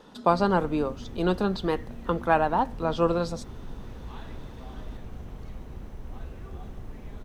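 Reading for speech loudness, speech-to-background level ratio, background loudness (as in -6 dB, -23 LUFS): -26.5 LUFS, 17.0 dB, -43.5 LUFS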